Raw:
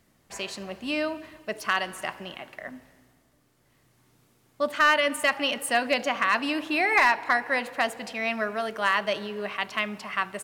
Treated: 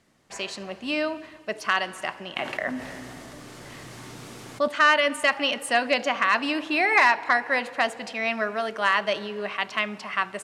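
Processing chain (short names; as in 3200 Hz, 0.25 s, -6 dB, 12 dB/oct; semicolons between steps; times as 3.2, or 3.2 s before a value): LPF 8400 Hz 12 dB/oct; low shelf 110 Hz -9 dB; 2.36–4.68 fast leveller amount 50%; gain +2 dB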